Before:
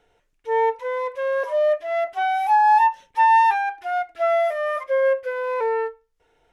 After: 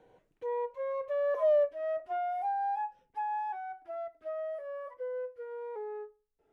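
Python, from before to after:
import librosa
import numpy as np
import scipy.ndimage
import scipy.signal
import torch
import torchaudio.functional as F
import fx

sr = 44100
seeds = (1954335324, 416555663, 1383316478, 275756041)

y = fx.doppler_pass(x, sr, speed_mps=22, closest_m=2.5, pass_at_s=1.52)
y = fx.tilt_shelf(y, sr, db=9.5, hz=1100.0)
y = fx.band_squash(y, sr, depth_pct=70)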